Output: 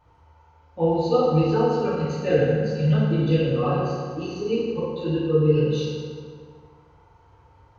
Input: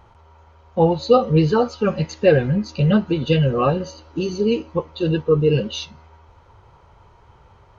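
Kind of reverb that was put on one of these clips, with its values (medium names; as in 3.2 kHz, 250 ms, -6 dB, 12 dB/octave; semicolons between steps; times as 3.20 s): FDN reverb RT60 2 s, low-frequency decay 1×, high-frequency decay 0.65×, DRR -9.5 dB; trim -15 dB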